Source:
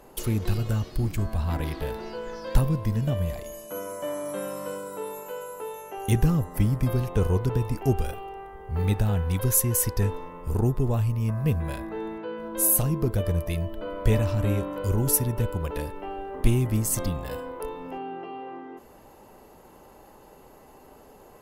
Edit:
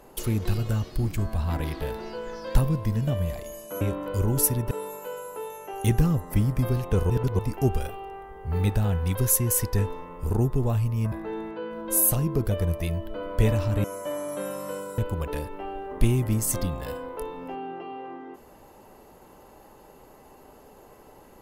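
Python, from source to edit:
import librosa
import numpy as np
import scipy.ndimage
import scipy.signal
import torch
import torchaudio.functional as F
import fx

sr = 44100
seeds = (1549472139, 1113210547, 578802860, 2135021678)

y = fx.edit(x, sr, fx.swap(start_s=3.81, length_s=1.14, other_s=14.51, other_length_s=0.9),
    fx.reverse_span(start_s=7.34, length_s=0.29),
    fx.cut(start_s=11.36, length_s=0.43), tone=tone)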